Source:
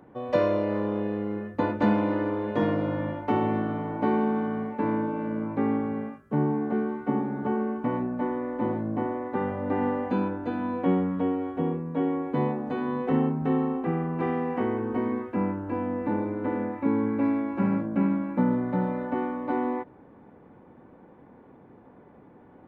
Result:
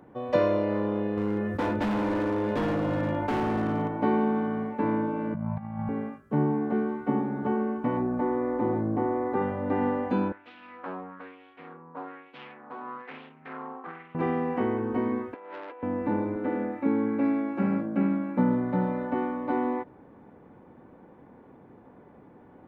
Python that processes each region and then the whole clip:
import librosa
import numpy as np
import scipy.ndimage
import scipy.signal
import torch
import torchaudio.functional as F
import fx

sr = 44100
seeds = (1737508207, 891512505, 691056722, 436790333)

y = fx.chain(x, sr, fx.overload_stage(gain_db=25.0),
    fx.env_flatten(amount_pct=70), at=(1.17, 3.88))
y = fx.chain(y, sr, fx.cheby1_bandstop(low_hz=210.0, high_hz=610.0, order=5),
    fx.tilt_shelf(db=8.5, hz=800.0),
    fx.over_compress(threshold_db=-32.0, ratio=-0.5), at=(5.34, 5.89))
y = fx.chain(y, sr, fx.peak_eq(hz=3400.0, db=-6.5, octaves=1.5),
    fx.comb(ms=2.5, depth=0.3),
    fx.env_flatten(amount_pct=50), at=(7.97, 9.42))
y = fx.chain(y, sr, fx.self_delay(depth_ms=0.36),
    fx.low_shelf(hz=160.0, db=8.0),
    fx.filter_lfo_bandpass(shape='sine', hz=1.1, low_hz=980.0, high_hz=3000.0, q=2.4), at=(10.32, 14.15))
y = fx.chain(y, sr, fx.cheby1_bandpass(low_hz=450.0, high_hz=3200.0, order=3),
    fx.over_compress(threshold_db=-41.0, ratio=-1.0),
    fx.transformer_sat(knee_hz=1300.0), at=(15.34, 15.83))
y = fx.chain(y, sr, fx.highpass(hz=160.0, slope=12),
    fx.notch(hz=1000.0, q=11.0), at=(16.36, 18.37))